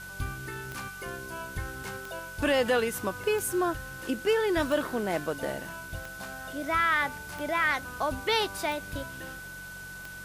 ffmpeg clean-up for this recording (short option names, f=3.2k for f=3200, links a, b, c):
-af "adeclick=t=4,bandreject=f=46.2:t=h:w=4,bandreject=f=92.4:t=h:w=4,bandreject=f=138.6:t=h:w=4,bandreject=f=184.8:t=h:w=4,bandreject=f=1.5k:w=30,afwtdn=0.0035"